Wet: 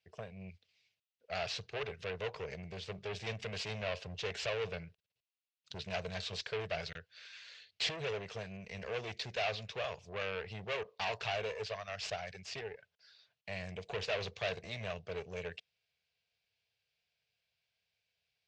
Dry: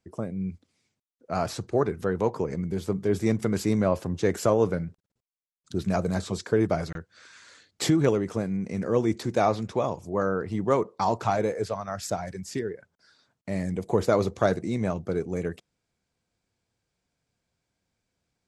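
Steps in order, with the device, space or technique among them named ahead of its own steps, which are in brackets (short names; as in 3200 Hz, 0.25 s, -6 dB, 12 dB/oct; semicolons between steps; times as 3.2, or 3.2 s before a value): high shelf 4200 Hz +8.5 dB; scooped metal amplifier (tube stage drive 27 dB, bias 0.7; speaker cabinet 96–4300 Hz, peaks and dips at 440 Hz +10 dB, 640 Hz +6 dB, 930 Hz -4 dB, 1300 Hz -6 dB, 2700 Hz +7 dB; passive tone stack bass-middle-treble 10-0-10); gain +4.5 dB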